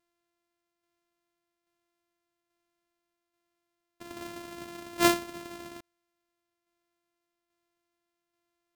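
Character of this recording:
a buzz of ramps at a fixed pitch in blocks of 128 samples
tremolo saw down 1.2 Hz, depth 40%

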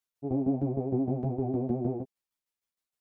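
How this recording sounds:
tremolo saw down 6.5 Hz, depth 75%
a shimmering, thickened sound

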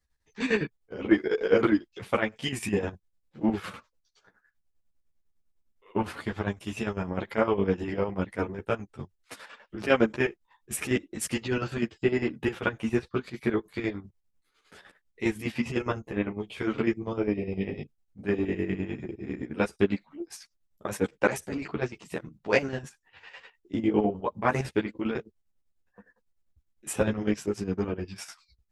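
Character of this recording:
chopped level 9.9 Hz, depth 65%, duty 50%
a shimmering, thickened sound

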